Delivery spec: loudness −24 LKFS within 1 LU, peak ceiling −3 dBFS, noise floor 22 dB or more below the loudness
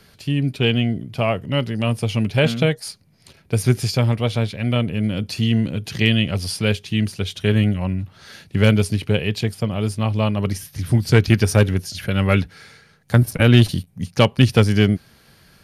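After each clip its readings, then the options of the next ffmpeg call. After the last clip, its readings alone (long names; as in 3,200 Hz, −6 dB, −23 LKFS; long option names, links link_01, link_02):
integrated loudness −19.5 LKFS; sample peak −3.5 dBFS; target loudness −24.0 LKFS
→ -af "volume=-4.5dB"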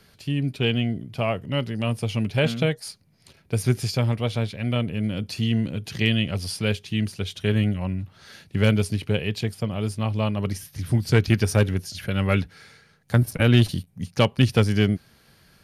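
integrated loudness −24.0 LKFS; sample peak −8.0 dBFS; background noise floor −58 dBFS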